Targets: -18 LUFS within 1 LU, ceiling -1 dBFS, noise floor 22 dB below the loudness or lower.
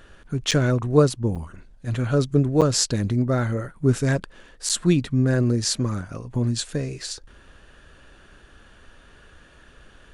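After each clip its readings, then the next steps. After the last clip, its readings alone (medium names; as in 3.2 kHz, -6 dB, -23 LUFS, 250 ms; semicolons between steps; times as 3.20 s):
dropouts 4; longest dropout 6.9 ms; loudness -23.0 LUFS; peak level -2.5 dBFS; loudness target -18.0 LUFS
-> interpolate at 0.51/1.35/2.61/4.69 s, 6.9 ms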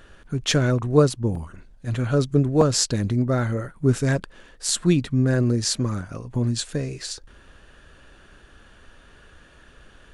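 dropouts 0; loudness -23.0 LUFS; peak level -2.5 dBFS; loudness target -18.0 LUFS
-> trim +5 dB; peak limiter -1 dBFS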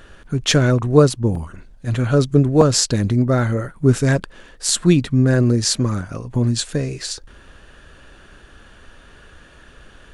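loudness -18.0 LUFS; peak level -1.0 dBFS; noise floor -46 dBFS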